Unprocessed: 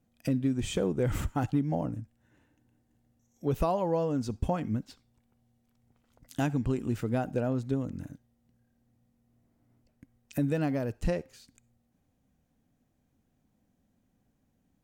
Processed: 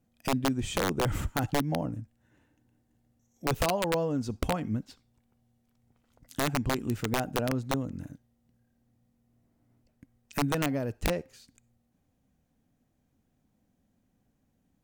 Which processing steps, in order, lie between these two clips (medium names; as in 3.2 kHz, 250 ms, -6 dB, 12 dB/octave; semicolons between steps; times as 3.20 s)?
integer overflow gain 19.5 dB